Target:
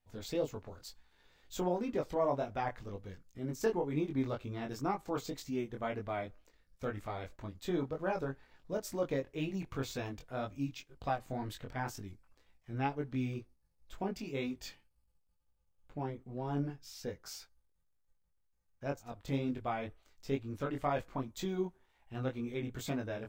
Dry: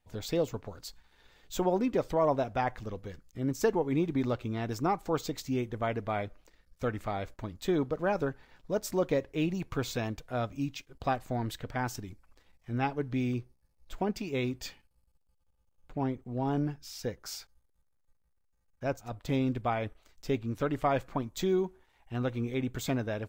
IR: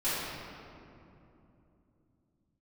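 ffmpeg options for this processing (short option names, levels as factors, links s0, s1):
-af "flanger=delay=20:depth=3:speed=2,volume=0.75"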